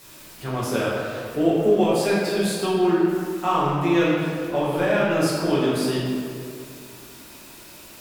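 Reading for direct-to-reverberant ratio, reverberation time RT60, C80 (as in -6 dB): -8.5 dB, 2.3 s, 0.5 dB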